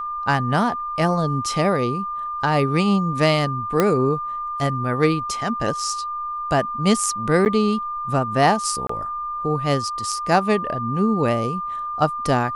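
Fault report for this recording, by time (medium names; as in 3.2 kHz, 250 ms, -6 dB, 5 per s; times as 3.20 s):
whine 1.2 kHz -25 dBFS
3.80 s: pop -4 dBFS
7.45–7.46 s: dropout 9.3 ms
8.87–8.89 s: dropout 24 ms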